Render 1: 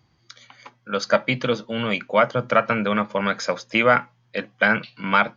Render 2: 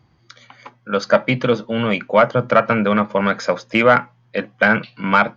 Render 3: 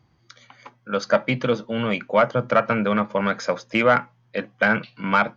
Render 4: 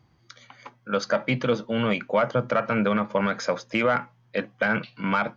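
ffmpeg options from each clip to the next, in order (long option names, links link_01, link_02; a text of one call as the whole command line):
ffmpeg -i in.wav -filter_complex "[0:a]highshelf=frequency=2800:gain=-9.5,asplit=2[link_01][link_02];[link_02]acontrast=66,volume=2dB[link_03];[link_01][link_03]amix=inputs=2:normalize=0,volume=-5dB" out.wav
ffmpeg -i in.wav -af "equalizer=frequency=6000:width_type=o:width=0.35:gain=3,volume=-4.5dB" out.wav
ffmpeg -i in.wav -af "alimiter=limit=-13dB:level=0:latency=1:release=53" out.wav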